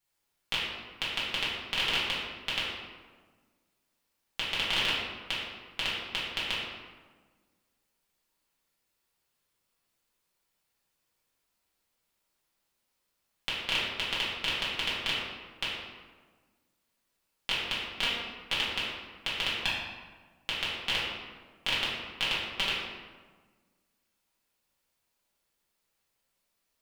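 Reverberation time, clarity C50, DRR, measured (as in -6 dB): 1.4 s, -0.5 dB, -9.0 dB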